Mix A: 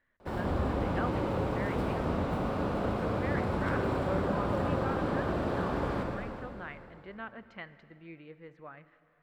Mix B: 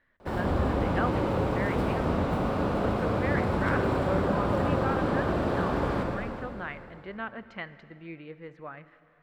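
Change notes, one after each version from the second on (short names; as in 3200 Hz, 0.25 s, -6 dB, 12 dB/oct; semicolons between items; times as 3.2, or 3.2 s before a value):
speech +6.0 dB; background +4.0 dB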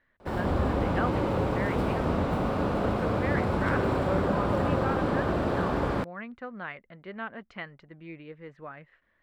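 speech: send off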